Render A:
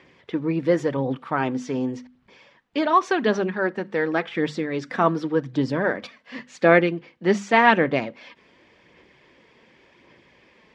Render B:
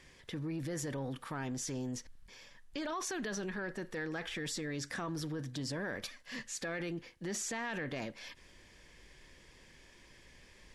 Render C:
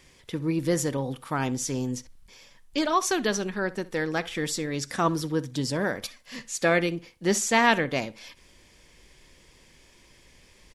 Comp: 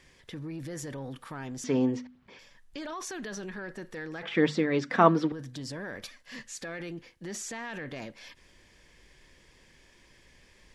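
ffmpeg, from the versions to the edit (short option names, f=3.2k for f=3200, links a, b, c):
-filter_complex "[0:a]asplit=2[a][b];[1:a]asplit=3[c][d][e];[c]atrim=end=1.642[f];[a]atrim=start=1.638:end=2.392[g];[d]atrim=start=2.388:end=4.232[h];[b]atrim=start=4.228:end=5.322[i];[e]atrim=start=5.318[j];[f][g]acrossfade=d=0.004:c1=hsin:c2=hsin[k];[k][h]acrossfade=d=0.004:c1=hsin:c2=hsin[l];[l][i]acrossfade=d=0.004:c1=hsin:c2=hsin[m];[m][j]acrossfade=d=0.004:c1=hsin:c2=hsin"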